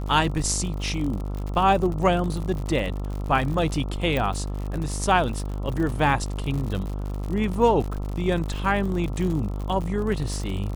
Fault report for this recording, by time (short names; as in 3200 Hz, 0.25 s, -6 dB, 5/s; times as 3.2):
buzz 50 Hz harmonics 27 -29 dBFS
crackle 79/s -30 dBFS
4.17 pop